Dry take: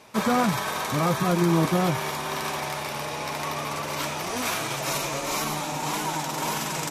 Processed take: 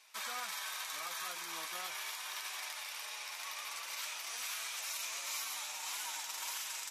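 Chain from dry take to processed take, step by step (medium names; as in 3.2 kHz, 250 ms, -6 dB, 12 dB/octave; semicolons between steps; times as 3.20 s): Bessel high-pass 2.3 kHz, order 2; peak limiter -24.5 dBFS, peak gain reduction 7 dB; flange 0.39 Hz, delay 2.6 ms, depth 5 ms, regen -62%; trim -1.5 dB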